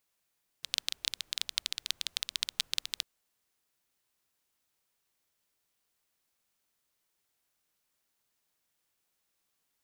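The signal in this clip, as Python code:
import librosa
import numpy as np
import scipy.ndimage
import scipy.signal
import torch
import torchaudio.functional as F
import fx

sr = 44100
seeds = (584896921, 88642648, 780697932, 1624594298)

y = fx.rain(sr, seeds[0], length_s=2.4, drops_per_s=14.0, hz=3700.0, bed_db=-29.5)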